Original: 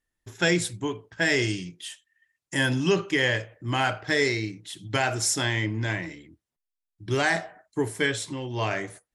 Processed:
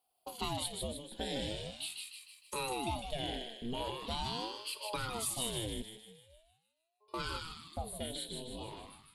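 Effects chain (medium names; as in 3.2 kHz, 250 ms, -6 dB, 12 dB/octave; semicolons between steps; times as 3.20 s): fade out at the end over 2.04 s; FFT filter 790 Hz 0 dB, 1.1 kHz -22 dB, 2.2 kHz -14 dB, 4 kHz +12 dB, 5.7 kHz -17 dB, 10 kHz +10 dB; compression 2.5:1, threshold -42 dBFS, peak gain reduction 15.5 dB; 5.82–7.14 s: inharmonic resonator 320 Hz, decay 0.83 s, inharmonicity 0.008; on a send: thinning echo 154 ms, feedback 52%, high-pass 730 Hz, level -3.5 dB; on the sum: ring modulator with a swept carrier 430 Hz, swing 75%, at 0.42 Hz; trim +3 dB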